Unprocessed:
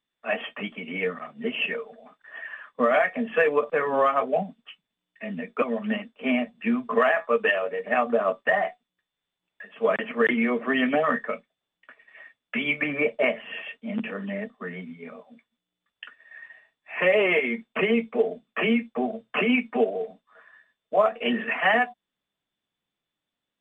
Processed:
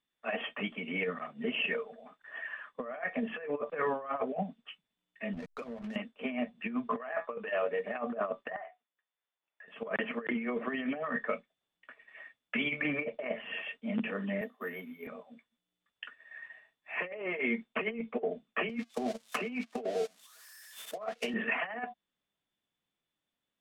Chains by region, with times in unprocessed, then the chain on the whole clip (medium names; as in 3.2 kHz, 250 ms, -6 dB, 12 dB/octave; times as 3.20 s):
5.33–5.96 s: hysteresis with a dead band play -31 dBFS + compression 12:1, threshold -34 dBFS
8.56–9.68 s: high-pass 600 Hz + distance through air 350 m + compression 2:1, threshold -49 dBFS
14.41–15.07 s: high-pass 240 Hz 24 dB/octave + careless resampling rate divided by 3×, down none, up hold
18.69–21.34 s: zero-crossing glitches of -23 dBFS + gate -32 dBFS, range -22 dB + three bands compressed up and down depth 40%
whole clip: low-pass that closes with the level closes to 2.2 kHz, closed at -17.5 dBFS; compressor with a negative ratio -26 dBFS, ratio -0.5; trim -6.5 dB